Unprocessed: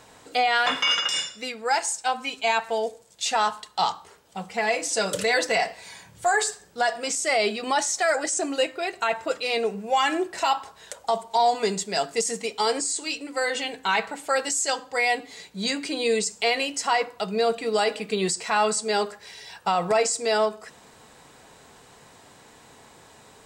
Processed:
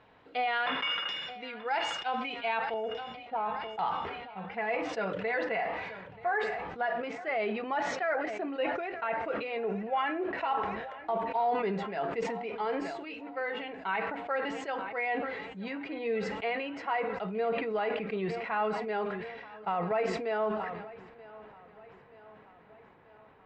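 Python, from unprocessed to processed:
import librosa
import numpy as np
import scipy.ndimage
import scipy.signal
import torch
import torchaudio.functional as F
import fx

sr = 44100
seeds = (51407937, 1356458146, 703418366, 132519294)

y = fx.lowpass(x, sr, hz=fx.steps((0.0, 3100.0), (2.74, 1100.0), (3.79, 2400.0)), slope=24)
y = fx.echo_feedback(y, sr, ms=930, feedback_pct=58, wet_db=-19.5)
y = fx.sustainer(y, sr, db_per_s=37.0)
y = y * 10.0 ** (-8.5 / 20.0)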